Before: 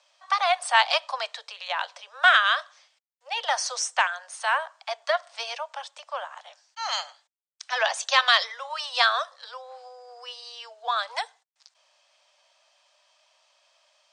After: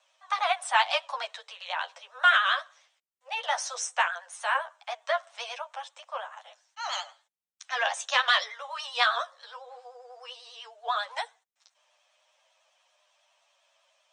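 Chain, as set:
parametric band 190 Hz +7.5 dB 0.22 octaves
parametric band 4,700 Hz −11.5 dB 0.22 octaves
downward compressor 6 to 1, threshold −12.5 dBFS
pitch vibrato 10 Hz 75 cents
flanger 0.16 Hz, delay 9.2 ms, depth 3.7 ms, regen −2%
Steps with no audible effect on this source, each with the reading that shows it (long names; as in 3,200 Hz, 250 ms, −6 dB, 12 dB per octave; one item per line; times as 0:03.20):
parametric band 190 Hz: nothing at its input below 430 Hz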